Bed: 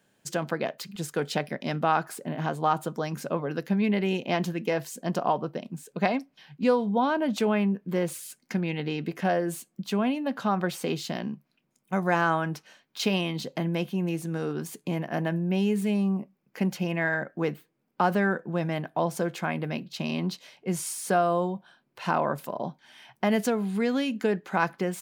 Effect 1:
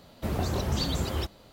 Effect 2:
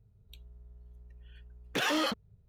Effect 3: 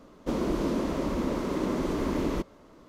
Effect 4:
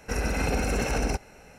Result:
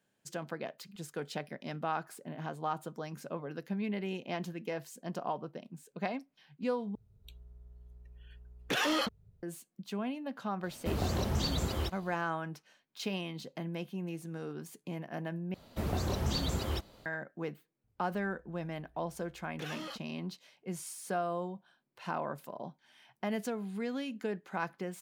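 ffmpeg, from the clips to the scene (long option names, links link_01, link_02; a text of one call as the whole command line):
ffmpeg -i bed.wav -i cue0.wav -i cue1.wav -filter_complex "[2:a]asplit=2[link_01][link_02];[1:a]asplit=2[link_03][link_04];[0:a]volume=-10.5dB,asplit=3[link_05][link_06][link_07];[link_05]atrim=end=6.954[link_08];[link_01]atrim=end=2.48,asetpts=PTS-STARTPTS,volume=-1dB[link_09];[link_06]atrim=start=9.426:end=15.544[link_10];[link_04]atrim=end=1.52,asetpts=PTS-STARTPTS,volume=-4dB[link_11];[link_07]atrim=start=17.056[link_12];[link_03]atrim=end=1.52,asetpts=PTS-STARTPTS,volume=-3.5dB,afade=type=in:duration=0.004:curve=hsin,afade=type=out:start_time=1.516:duration=0.004:curve=hsin,adelay=10630[link_13];[link_02]atrim=end=2.48,asetpts=PTS-STARTPTS,volume=-13.5dB,afade=type=in:duration=0.004:curve=hsin,afade=type=out:start_time=2.476:duration=0.004:curve=hsin,adelay=17840[link_14];[link_08][link_09]acrossfade=duration=0.004:curve1=hsin:curve2=hsin[link_15];[link_15][link_10]acrossfade=duration=0.004:curve1=hsin:curve2=hsin[link_16];[link_16][link_11]acrossfade=duration=0.004:curve1=hsin:curve2=hsin[link_17];[link_17][link_12]acrossfade=duration=0.004:curve1=hsin:curve2=hsin[link_18];[link_18][link_13][link_14]amix=inputs=3:normalize=0" out.wav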